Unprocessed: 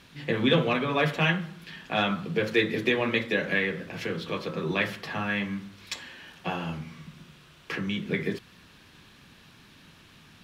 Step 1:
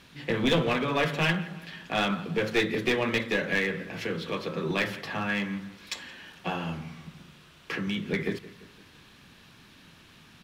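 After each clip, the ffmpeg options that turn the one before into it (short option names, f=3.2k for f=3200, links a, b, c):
-filter_complex "[0:a]bandreject=f=50:t=h:w=6,bandreject=f=100:t=h:w=6,bandreject=f=150:t=h:w=6,asplit=2[a][b];[b]adelay=170,lowpass=f=3.2k:p=1,volume=-18dB,asplit=2[c][d];[d]adelay=170,lowpass=f=3.2k:p=1,volume=0.51,asplit=2[e][f];[f]adelay=170,lowpass=f=3.2k:p=1,volume=0.51,asplit=2[g][h];[h]adelay=170,lowpass=f=3.2k:p=1,volume=0.51[i];[a][c][e][g][i]amix=inputs=5:normalize=0,aeval=exprs='clip(val(0),-1,0.0708)':c=same"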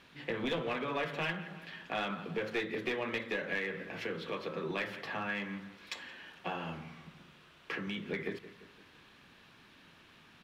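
-af "bass=f=250:g=-7,treble=f=4k:g=-8,acompressor=threshold=-32dB:ratio=2,volume=-3dB"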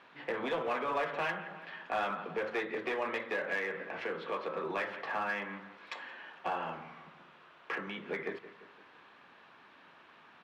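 -filter_complex "[0:a]bandpass=f=920:t=q:w=0.96:csg=0,asplit=2[a][b];[b]asoftclip=type=hard:threshold=-37.5dB,volume=-3dB[c];[a][c]amix=inputs=2:normalize=0,volume=2dB"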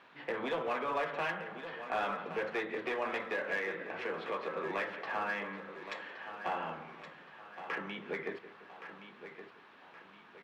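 -af "aecho=1:1:1120|2240|3360|4480:0.282|0.116|0.0474|0.0194,volume=-1dB"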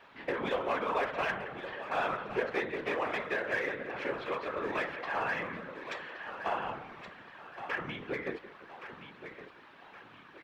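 -af "afftfilt=real='hypot(re,im)*cos(2*PI*random(0))':imag='hypot(re,im)*sin(2*PI*random(1))':win_size=512:overlap=0.75,volume=8.5dB"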